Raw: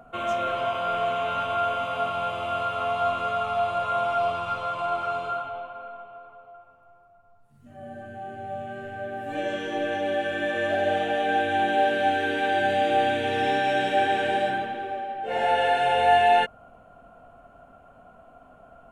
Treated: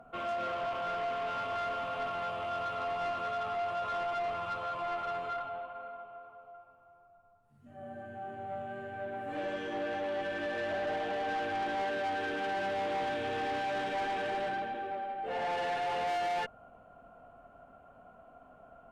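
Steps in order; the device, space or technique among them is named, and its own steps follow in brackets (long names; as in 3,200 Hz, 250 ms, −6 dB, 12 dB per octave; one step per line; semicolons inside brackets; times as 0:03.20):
tube preamp driven hard (tube saturation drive 27 dB, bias 0.3; low-shelf EQ 200 Hz −3.5 dB; high-shelf EQ 3,300 Hz −8 dB)
level −3 dB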